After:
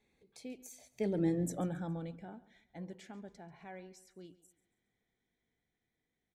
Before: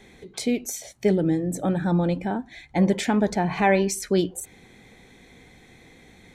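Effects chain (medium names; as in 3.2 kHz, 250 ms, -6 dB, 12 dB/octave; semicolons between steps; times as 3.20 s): Doppler pass-by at 1.37 s, 15 m/s, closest 2.3 m; feedback delay 138 ms, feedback 37%, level -18.5 dB; trim -6.5 dB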